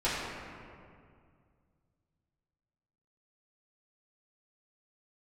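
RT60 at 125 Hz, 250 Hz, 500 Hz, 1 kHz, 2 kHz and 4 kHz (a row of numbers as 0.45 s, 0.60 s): 3.2 s, 2.6 s, 2.3 s, 2.1 s, 1.8 s, 1.3 s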